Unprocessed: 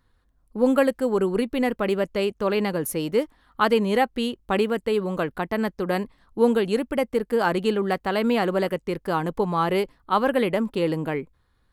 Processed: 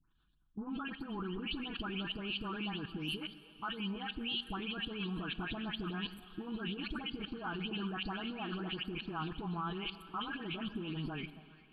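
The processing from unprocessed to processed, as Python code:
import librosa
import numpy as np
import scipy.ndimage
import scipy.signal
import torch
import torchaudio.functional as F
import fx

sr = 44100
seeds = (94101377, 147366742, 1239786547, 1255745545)

y = fx.spec_delay(x, sr, highs='late', ms=223)
y = fx.env_lowpass_down(y, sr, base_hz=2300.0, full_db=-19.0)
y = y + 0.45 * np.pad(y, (int(6.1 * sr / 1000.0), 0))[:len(y)]
y = fx.hpss(y, sr, part='harmonic', gain_db=-8)
y = fx.curve_eq(y, sr, hz=(370.0, 930.0, 3100.0, 4400.0), db=(0, -6, 7, -8))
y = fx.rider(y, sr, range_db=10, speed_s=2.0)
y = fx.transient(y, sr, attack_db=-5, sustain_db=3)
y = fx.level_steps(y, sr, step_db=19)
y = fx.fixed_phaser(y, sr, hz=2000.0, stages=6)
y = fx.echo_stepped(y, sr, ms=134, hz=230.0, octaves=1.4, feedback_pct=70, wet_db=-11.0)
y = fx.rev_plate(y, sr, seeds[0], rt60_s=3.1, hf_ratio=1.0, predelay_ms=0, drr_db=14.5)
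y = F.gain(torch.from_numpy(y), 2.5).numpy()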